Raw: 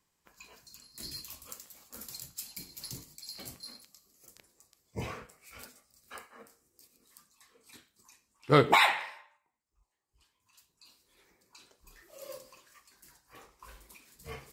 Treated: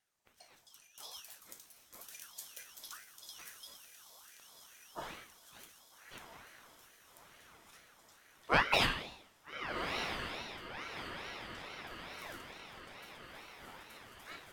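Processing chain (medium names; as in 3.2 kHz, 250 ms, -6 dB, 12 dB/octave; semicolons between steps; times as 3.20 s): feedback comb 55 Hz, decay 0.71 s, mix 60%; on a send: echo that smears into a reverb 1287 ms, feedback 57%, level -7 dB; on the sum: ring modulator with a swept carrier 1.3 kHz, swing 40%, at 2.3 Hz; trim +2 dB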